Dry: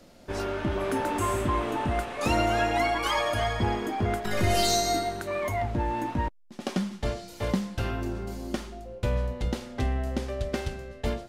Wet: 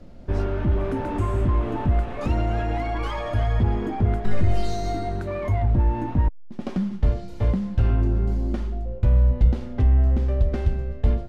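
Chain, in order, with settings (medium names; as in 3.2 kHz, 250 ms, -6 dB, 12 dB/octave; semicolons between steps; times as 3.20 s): compression, threshold -26 dBFS, peak gain reduction 7 dB; hard clipper -25.5 dBFS, distortion -17 dB; RIAA curve playback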